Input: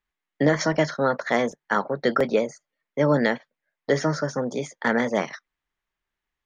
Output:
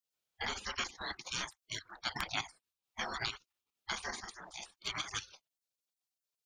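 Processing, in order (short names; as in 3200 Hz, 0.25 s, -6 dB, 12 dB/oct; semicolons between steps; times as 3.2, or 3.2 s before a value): level quantiser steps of 11 dB; spectral gate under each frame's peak -25 dB weak; gain +6.5 dB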